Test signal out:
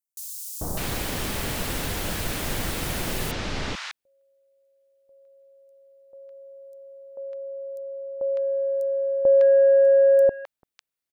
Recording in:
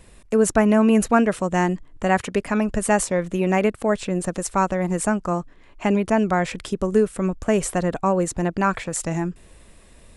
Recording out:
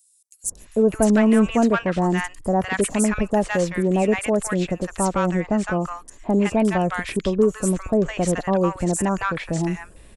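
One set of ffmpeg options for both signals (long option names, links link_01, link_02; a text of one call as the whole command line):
ffmpeg -i in.wav -filter_complex "[0:a]acontrast=77,acrossover=split=1000|6000[link_01][link_02][link_03];[link_01]adelay=440[link_04];[link_02]adelay=600[link_05];[link_04][link_05][link_03]amix=inputs=3:normalize=0,volume=-5dB" out.wav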